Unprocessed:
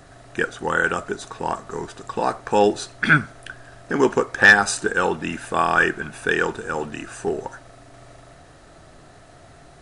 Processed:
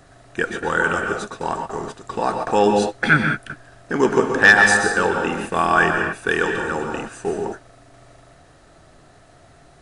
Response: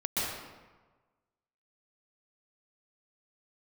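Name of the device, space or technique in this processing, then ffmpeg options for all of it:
keyed gated reverb: -filter_complex "[0:a]asplit=3[link_01][link_02][link_03];[1:a]atrim=start_sample=2205[link_04];[link_02][link_04]afir=irnorm=-1:irlink=0[link_05];[link_03]apad=whole_len=433049[link_06];[link_05][link_06]sidechaingate=range=-33dB:threshold=-34dB:ratio=16:detection=peak,volume=-7.5dB[link_07];[link_01][link_07]amix=inputs=2:normalize=0,volume=-2.5dB"

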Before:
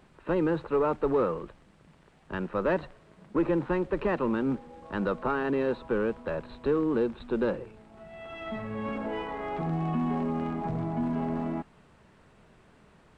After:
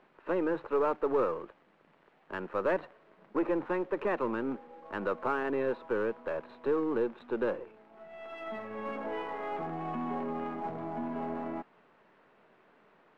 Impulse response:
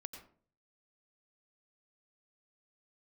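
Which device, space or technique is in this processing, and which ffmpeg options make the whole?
crystal radio: -af "highpass=330,lowpass=2600,aeval=exprs='if(lt(val(0),0),0.708*val(0),val(0))':channel_layout=same"

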